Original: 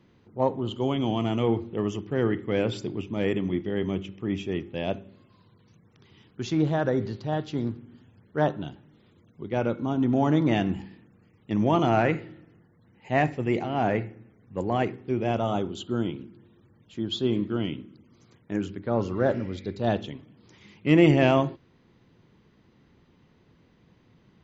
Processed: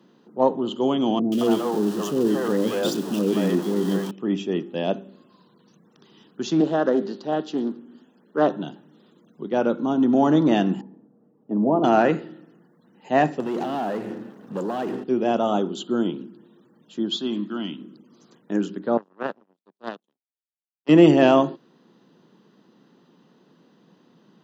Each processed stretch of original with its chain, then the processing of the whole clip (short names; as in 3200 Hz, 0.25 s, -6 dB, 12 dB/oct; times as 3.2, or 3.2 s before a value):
1.19–4.11 zero-crossing step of -32 dBFS + three bands offset in time lows, highs, mids 0.13/0.22 s, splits 500/2100 Hz
6.6–8.51 Chebyshev high-pass 250 Hz + Doppler distortion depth 0.23 ms
10.81–11.84 Chebyshev band-pass 120–710 Hz + notch comb 180 Hz
13.4–15.04 compressor 10:1, threshold -34 dBFS + sample leveller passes 3
17.16–17.81 HPF 200 Hz + bell 460 Hz -14 dB 0.87 oct
18.97–20.89 HPF 720 Hz 6 dB/oct + tilt -3 dB/oct + power-law curve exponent 3
whole clip: steep high-pass 170 Hz 36 dB/oct; bell 2200 Hz -14.5 dB 0.32 oct; gain +5.5 dB